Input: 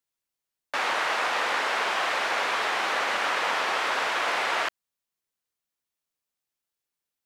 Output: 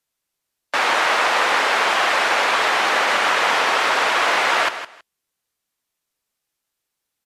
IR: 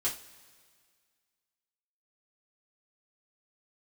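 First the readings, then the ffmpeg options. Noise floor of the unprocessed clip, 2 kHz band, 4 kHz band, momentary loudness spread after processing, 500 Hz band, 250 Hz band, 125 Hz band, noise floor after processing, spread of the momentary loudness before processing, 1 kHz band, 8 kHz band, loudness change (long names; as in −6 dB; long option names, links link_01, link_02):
below −85 dBFS, +8.5 dB, +8.5 dB, 3 LU, +8.5 dB, +8.5 dB, can't be measured, −80 dBFS, 2 LU, +8.5 dB, +9.0 dB, +8.5 dB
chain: -af "aecho=1:1:161|322:0.266|0.0479,volume=8.5dB" -ar 32000 -c:a libmp3lame -b:a 64k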